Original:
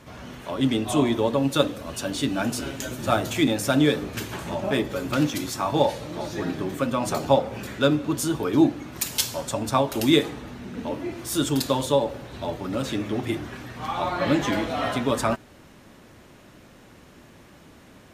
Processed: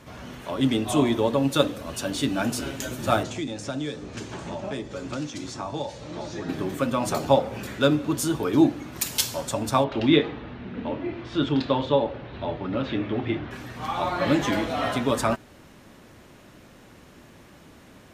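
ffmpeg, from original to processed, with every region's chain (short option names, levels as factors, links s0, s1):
-filter_complex "[0:a]asettb=1/sr,asplit=3[s0][s1][s2];[s0]atrim=end=3.234[s3];[s1]atrim=start=3.23:end=6.49,asetpts=PTS-STARTPTS,afade=t=in:d=0.004:c=qsin,afade=t=out:st=3.256:d=0.004:c=qsin,lowpass=f=7300:w=0.5412,lowpass=f=7300:w=1.3066,acrossover=split=140|970|5500[s4][s5][s6][s7];[s4]acompressor=threshold=0.00631:ratio=3[s8];[s5]acompressor=threshold=0.0224:ratio=3[s9];[s6]acompressor=threshold=0.00631:ratio=3[s10];[s7]acompressor=threshold=0.00708:ratio=3[s11];[s8][s9][s10][s11]amix=inputs=4:normalize=0[s12];[s2]atrim=start=6.486[s13];[s3][s12]acrossfade=d=0.004:c1=hsin:c2=qsin[s14];[s14][s13]acrossfade=d=0.004:c1=qsin:c2=hsin,asettb=1/sr,asplit=3[s15][s16][s17];[s15]atrim=end=9.844[s18];[s16]atrim=start=9.84:end=13.51,asetpts=PTS-STARTPTS,afade=t=in:d=0.004:c=qsin,afade=t=out:st=3.666:d=0.004:c=qsin,lowpass=f=3600:w=0.5412,lowpass=f=3600:w=1.3066,asplit=2[s19][s20];[s20]adelay=26,volume=0.224[s21];[s19][s21]amix=inputs=2:normalize=0,atrim=end_sample=161847[s22];[s17]atrim=start=13.506[s23];[s18][s22]acrossfade=d=0.004:c1=hsin:c2=qsin[s24];[s24][s23]acrossfade=d=0.004:c1=qsin:c2=hsin"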